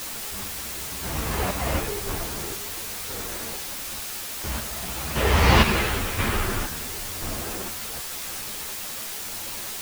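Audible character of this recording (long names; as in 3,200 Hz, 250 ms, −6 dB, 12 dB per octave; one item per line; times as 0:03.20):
chopped level 0.97 Hz, depth 65%, duty 45%
a quantiser's noise floor 6 bits, dither triangular
a shimmering, thickened sound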